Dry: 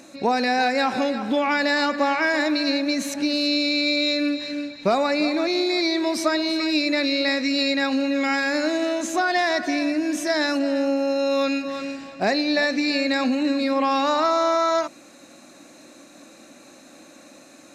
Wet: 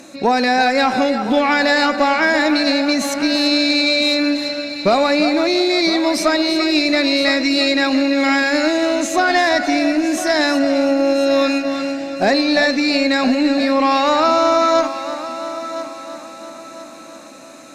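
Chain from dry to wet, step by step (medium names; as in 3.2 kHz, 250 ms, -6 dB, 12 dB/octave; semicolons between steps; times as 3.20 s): multi-head delay 337 ms, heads first and third, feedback 50%, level -14 dB; Chebyshev shaper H 2 -17 dB, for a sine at -7.5 dBFS; trim +6 dB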